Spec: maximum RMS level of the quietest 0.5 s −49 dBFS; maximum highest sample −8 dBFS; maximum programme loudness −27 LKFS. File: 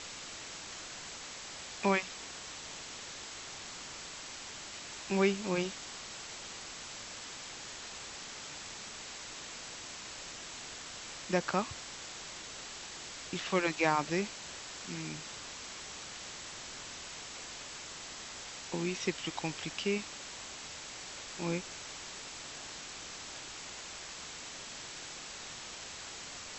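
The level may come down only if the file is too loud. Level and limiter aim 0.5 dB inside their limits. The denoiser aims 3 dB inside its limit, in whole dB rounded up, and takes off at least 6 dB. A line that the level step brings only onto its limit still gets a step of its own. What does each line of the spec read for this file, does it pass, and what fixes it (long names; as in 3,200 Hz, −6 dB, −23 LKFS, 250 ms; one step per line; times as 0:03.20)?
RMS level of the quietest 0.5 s −46 dBFS: out of spec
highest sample −13.0 dBFS: in spec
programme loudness −39.0 LKFS: in spec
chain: broadband denoise 6 dB, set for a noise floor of −46 dBFS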